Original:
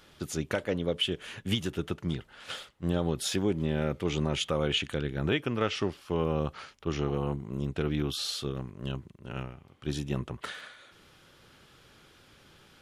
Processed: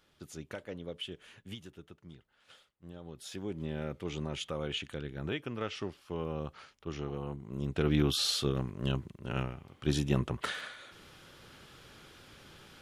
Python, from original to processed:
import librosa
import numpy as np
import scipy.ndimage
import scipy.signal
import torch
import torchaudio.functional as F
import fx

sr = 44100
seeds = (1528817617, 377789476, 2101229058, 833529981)

y = fx.gain(x, sr, db=fx.line((1.23, -12.0), (1.91, -19.5), (2.97, -19.5), (3.62, -8.0), (7.36, -8.0), (7.95, 3.0)))